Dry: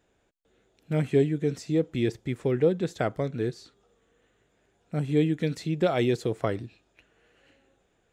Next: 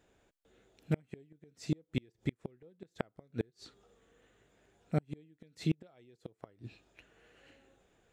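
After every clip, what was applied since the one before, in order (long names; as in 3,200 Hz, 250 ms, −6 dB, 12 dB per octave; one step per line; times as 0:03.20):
gate with flip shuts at −19 dBFS, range −36 dB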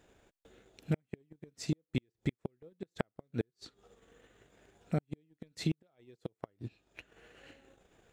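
downward compressor 1.5 to 1, threshold −52 dBFS, peak gain reduction 10 dB
transient designer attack +5 dB, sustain −10 dB
level +4.5 dB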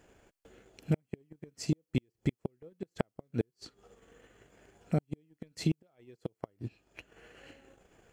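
notch filter 3,700 Hz, Q 6.6
dynamic equaliser 1,700 Hz, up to −5 dB, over −59 dBFS, Q 1.3
level +3 dB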